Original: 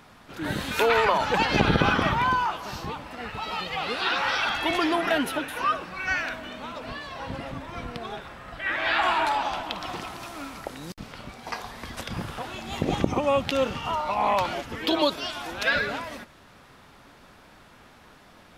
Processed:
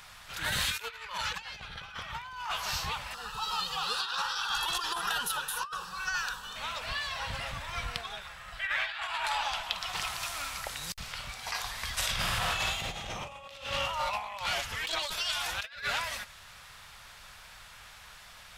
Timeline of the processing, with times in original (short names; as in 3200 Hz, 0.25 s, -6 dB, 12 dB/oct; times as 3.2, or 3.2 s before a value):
0.65–1.41 bell 720 Hz -14.5 dB 0.36 oct
3.14–6.56 fixed phaser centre 430 Hz, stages 8
8.01–9.95 flange 1.4 Hz, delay 3.3 ms, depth 3.1 ms, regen +73%
11.98–13.56 reverb throw, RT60 1.5 s, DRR -5 dB
14.67–15.41 tube stage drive 23 dB, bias 0.3
whole clip: passive tone stack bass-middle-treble 10-0-10; negative-ratio compressor -38 dBFS, ratio -0.5; bell 7700 Hz +2 dB 0.38 oct; gain +5 dB